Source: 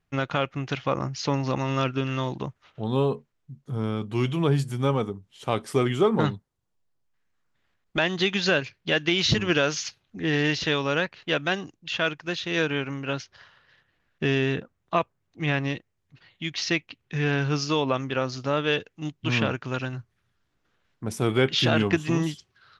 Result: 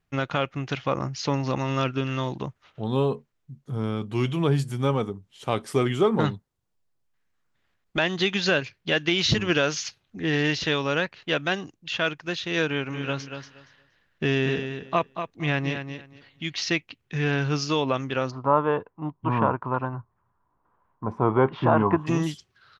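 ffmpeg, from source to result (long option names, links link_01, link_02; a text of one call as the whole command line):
ffmpeg -i in.wav -filter_complex "[0:a]asplit=3[link_01][link_02][link_03];[link_01]afade=type=out:start_time=12.9:duration=0.02[link_04];[link_02]aecho=1:1:235|470|705:0.398|0.0717|0.0129,afade=type=in:start_time=12.9:duration=0.02,afade=type=out:start_time=16.59:duration=0.02[link_05];[link_03]afade=type=in:start_time=16.59:duration=0.02[link_06];[link_04][link_05][link_06]amix=inputs=3:normalize=0,asplit=3[link_07][link_08][link_09];[link_07]afade=type=out:start_time=18.3:duration=0.02[link_10];[link_08]lowpass=frequency=1000:width_type=q:width=7.7,afade=type=in:start_time=18.3:duration=0.02,afade=type=out:start_time=22.06:duration=0.02[link_11];[link_09]afade=type=in:start_time=22.06:duration=0.02[link_12];[link_10][link_11][link_12]amix=inputs=3:normalize=0" out.wav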